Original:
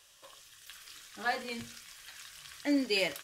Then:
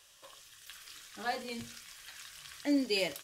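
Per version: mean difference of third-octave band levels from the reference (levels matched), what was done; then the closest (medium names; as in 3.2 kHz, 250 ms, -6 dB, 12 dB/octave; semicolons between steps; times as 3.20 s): 1.0 dB: dynamic bell 1.6 kHz, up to -6 dB, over -48 dBFS, Q 0.89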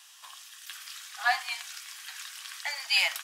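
8.5 dB: steep high-pass 720 Hz 72 dB/octave; trim +7.5 dB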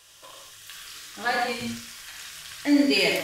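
2.5 dB: gated-style reverb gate 180 ms flat, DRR -0.5 dB; trim +6 dB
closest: first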